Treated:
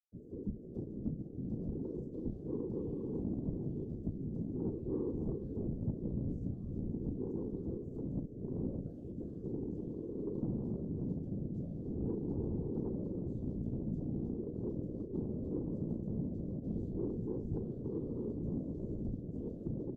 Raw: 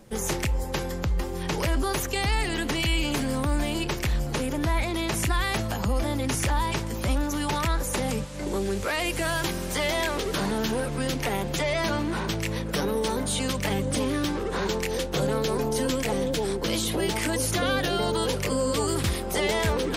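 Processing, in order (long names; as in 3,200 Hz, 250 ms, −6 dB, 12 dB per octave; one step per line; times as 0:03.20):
channel vocoder with a chord as carrier bare fifth, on A#2
on a send at −22 dB: convolution reverb RT60 0.70 s, pre-delay 3 ms
on the sum: dead-zone distortion −42 dBFS
double-tracking delay 37 ms −7 dB
automatic gain control gain up to 13 dB
spectral tilt +4 dB per octave
downward compressor, threshold −20 dBFS, peak gain reduction 5.5 dB
inverse Chebyshev low-pass filter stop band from 800 Hz, stop band 50 dB
repeating echo 332 ms, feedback 56%, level −14.5 dB
soft clipping −22 dBFS, distortion −21 dB
random phases in short frames
level −6.5 dB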